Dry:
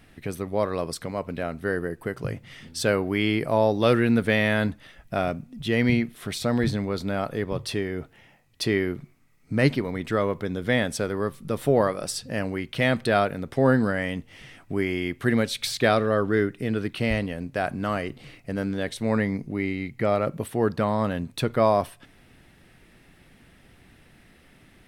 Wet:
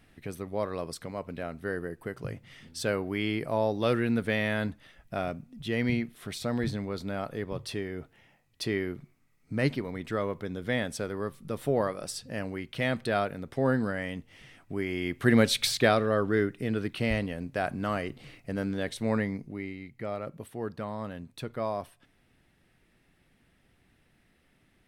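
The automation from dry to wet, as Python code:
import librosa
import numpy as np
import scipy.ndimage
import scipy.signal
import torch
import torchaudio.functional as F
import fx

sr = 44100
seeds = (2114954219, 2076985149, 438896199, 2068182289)

y = fx.gain(x, sr, db=fx.line((14.84, -6.5), (15.52, 3.5), (15.96, -3.5), (19.09, -3.5), (19.8, -12.0)))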